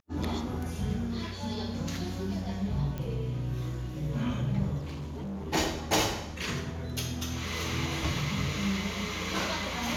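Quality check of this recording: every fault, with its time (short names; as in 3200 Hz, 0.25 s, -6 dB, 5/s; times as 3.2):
2.98 pop -23 dBFS
4.78–5.48 clipped -34 dBFS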